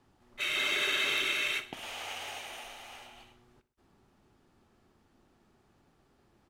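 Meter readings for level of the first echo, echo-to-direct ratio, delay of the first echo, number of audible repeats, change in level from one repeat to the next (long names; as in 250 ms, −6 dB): −16.0 dB, −15.0 dB, 63 ms, 2, −6.5 dB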